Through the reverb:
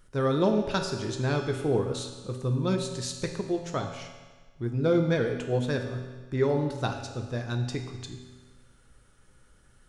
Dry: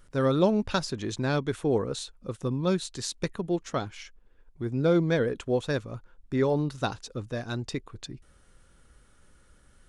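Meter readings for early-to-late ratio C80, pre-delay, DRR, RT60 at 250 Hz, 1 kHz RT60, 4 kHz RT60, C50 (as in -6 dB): 8.0 dB, 3 ms, 3.5 dB, 1.4 s, 1.4 s, 1.3 s, 6.5 dB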